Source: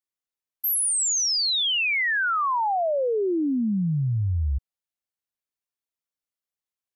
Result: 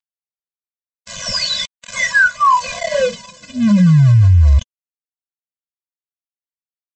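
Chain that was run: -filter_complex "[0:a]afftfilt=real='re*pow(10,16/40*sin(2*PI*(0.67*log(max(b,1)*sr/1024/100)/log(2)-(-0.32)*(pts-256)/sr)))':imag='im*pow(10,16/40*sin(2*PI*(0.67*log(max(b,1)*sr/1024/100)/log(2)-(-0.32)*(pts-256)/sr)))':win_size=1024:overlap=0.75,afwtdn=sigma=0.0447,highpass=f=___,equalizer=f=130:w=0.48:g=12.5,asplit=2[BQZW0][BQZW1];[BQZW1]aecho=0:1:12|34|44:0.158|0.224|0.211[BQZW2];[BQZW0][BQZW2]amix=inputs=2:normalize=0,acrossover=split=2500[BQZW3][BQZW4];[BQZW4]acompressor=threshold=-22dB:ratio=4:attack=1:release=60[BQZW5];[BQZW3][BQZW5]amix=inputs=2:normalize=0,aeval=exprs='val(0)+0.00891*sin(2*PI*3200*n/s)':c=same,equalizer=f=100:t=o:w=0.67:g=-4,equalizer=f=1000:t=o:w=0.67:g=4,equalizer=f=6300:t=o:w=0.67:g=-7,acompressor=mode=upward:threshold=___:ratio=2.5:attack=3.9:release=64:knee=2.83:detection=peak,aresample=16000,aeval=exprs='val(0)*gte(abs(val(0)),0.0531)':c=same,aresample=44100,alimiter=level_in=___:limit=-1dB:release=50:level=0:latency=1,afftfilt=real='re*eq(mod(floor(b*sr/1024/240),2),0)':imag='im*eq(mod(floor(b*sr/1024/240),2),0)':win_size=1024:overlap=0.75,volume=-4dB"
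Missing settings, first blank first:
76, -30dB, 15.5dB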